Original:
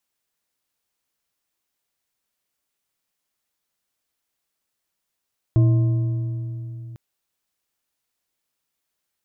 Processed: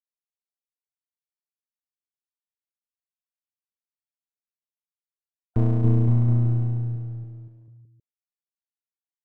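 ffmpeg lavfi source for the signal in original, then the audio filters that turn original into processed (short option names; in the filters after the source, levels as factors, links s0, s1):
-f lavfi -i "aevalsrc='0.266*pow(10,-3*t/3.63)*sin(2*PI*118*t)+0.075*pow(10,-3*t/2.678)*sin(2*PI*325.3*t)+0.0211*pow(10,-3*t/2.188)*sin(2*PI*637.7*t)+0.00596*pow(10,-3*t/1.882)*sin(2*PI*1054.1*t)':d=1.4:s=44100"
-af "afftfilt=real='re*gte(hypot(re,im),0.00794)':imag='im*gte(hypot(re,im),0.00794)':win_size=1024:overlap=0.75,aeval=exprs='clip(val(0),-1,0.0266)':c=same,aecho=1:1:280|518|720.3|892.3|1038:0.631|0.398|0.251|0.158|0.1"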